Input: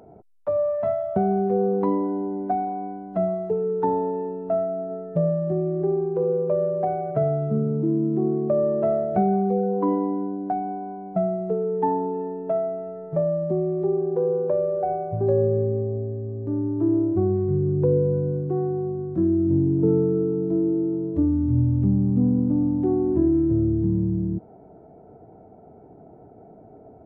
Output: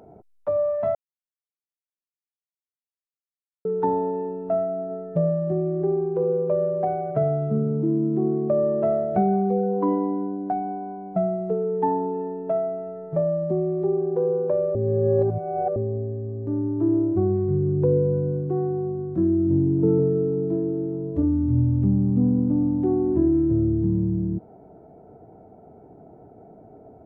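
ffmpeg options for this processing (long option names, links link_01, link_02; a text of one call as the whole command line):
ffmpeg -i in.wav -filter_complex "[0:a]asettb=1/sr,asplit=3[link_01][link_02][link_03];[link_01]atrim=end=19.964[link_04];[link_02]atrim=start=19.96:end=21.23,asetpts=PTS-STARTPTS,afade=type=in:duration=0.004:curve=qsin,afade=type=out:start_time=1.266:duration=0.004:curve=qsin,asplit=2[link_05][link_06];[link_06]adelay=29,volume=-6dB[link_07];[link_05][link_07]amix=inputs=2:normalize=0,atrim=end_sample=56007[link_08];[link_03]atrim=start=21.226[link_09];[link_04][link_08]acrossfade=duration=0.004:curve1=hsin:curve2=qsin[link_10];[link_10][link_09]acrossfade=duration=0.004:curve1=qsin:curve2=hsin,asplit=5[link_11][link_12][link_13][link_14][link_15];[link_11]atrim=end=0.95,asetpts=PTS-STARTPTS,afade=type=out:start_time=0.946:duration=0.004:curve=hsin[link_16];[link_12]atrim=start=0.95:end=3.65,asetpts=PTS-STARTPTS,volume=0[link_17];[link_13]atrim=start=3.65:end=14.752,asetpts=PTS-STARTPTS,afade=type=in:duration=0.004:curve=hsin[link_18];[link_14]atrim=start=14.748:end=15.762,asetpts=PTS-STARTPTS,areverse[link_19];[link_15]atrim=start=15.758[link_20];[link_16][link_17][link_18]concat=n=3:v=0:a=1[link_21];[link_21][link_19]acrossfade=duration=0.004:curve1=hsin:curve2=hsin[link_22];[link_22][link_20]acrossfade=duration=0.004:curve1=hsin:curve2=hsin" out.wav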